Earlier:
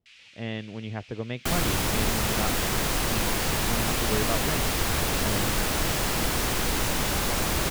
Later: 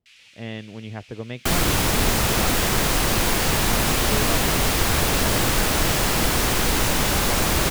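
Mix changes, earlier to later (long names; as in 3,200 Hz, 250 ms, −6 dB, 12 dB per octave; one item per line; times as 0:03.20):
first sound: remove high-frequency loss of the air 52 metres
second sound +5.5 dB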